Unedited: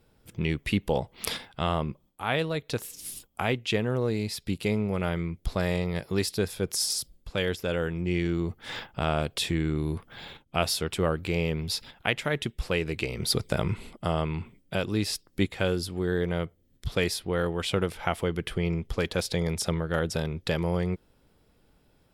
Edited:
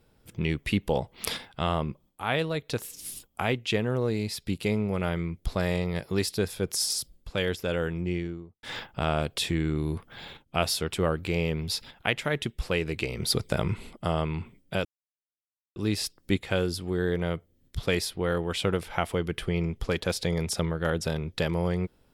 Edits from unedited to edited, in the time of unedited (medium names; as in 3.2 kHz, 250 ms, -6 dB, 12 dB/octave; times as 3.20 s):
7.91–8.63 s: studio fade out
14.85 s: insert silence 0.91 s